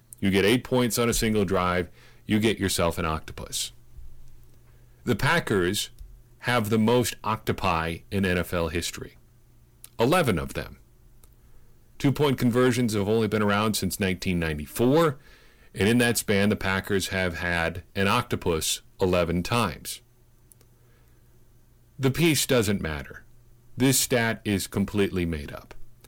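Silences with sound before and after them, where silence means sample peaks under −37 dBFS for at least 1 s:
0:20.61–0:21.99

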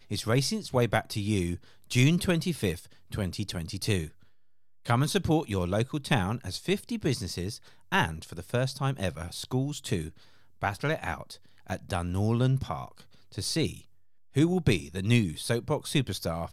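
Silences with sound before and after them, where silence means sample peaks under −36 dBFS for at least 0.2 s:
0:01.56–0:01.91
0:02.79–0:03.12
0:04.07–0:04.86
0:07.56–0:07.92
0:10.08–0:10.63
0:11.33–0:11.70
0:13.00–0:13.38
0:13.77–0:14.36

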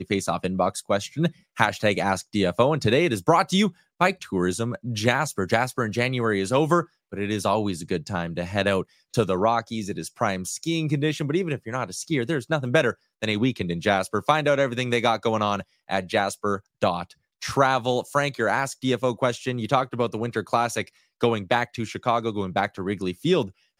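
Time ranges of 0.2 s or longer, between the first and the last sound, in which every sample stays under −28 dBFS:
0:01.28–0:01.58
0:03.68–0:04.01
0:06.82–0:07.13
0:08.82–0:09.14
0:12.91–0:13.23
0:15.61–0:15.90
0:16.57–0:16.83
0:17.03–0:17.42
0:20.82–0:21.23

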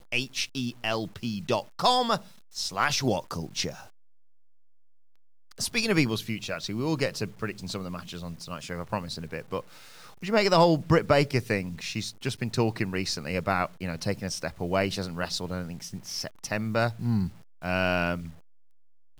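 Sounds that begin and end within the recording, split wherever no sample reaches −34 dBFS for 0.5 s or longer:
0:05.52–0:09.60
0:10.23–0:18.30

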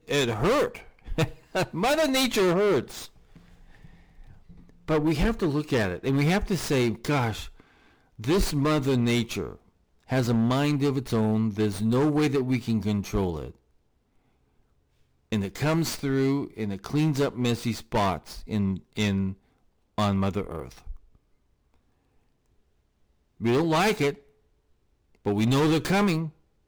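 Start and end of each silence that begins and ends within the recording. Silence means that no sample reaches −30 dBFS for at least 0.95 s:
0:03.04–0:04.88
0:13.45–0:15.32
0:20.91–0:23.43
0:24.11–0:25.26

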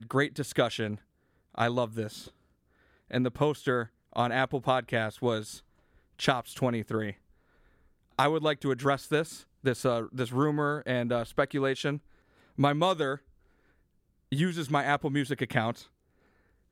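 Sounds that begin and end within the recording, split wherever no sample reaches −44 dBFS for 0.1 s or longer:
0:01.55–0:02.29
0:03.11–0:03.87
0:04.13–0:05.59
0:06.19–0:07.13
0:08.19–0:09.41
0:09.64–0:11.98
0:12.58–0:13.17
0:14.32–0:15.84

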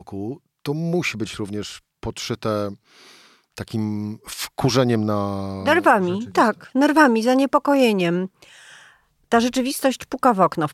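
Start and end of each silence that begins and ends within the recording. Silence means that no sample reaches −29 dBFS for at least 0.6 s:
0:02.73–0:03.57
0:08.43–0:09.32

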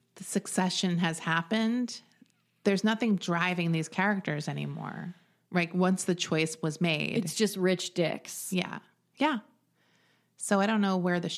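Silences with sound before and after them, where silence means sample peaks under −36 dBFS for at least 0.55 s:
0:01.97–0:02.66
0:09.39–0:10.41

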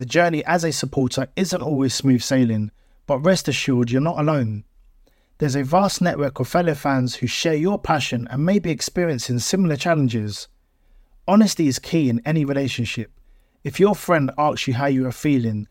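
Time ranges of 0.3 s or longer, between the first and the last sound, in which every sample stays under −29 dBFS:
0:02.68–0:03.08
0:04.60–0:05.40
0:10.44–0:11.28
0:13.03–0:13.65

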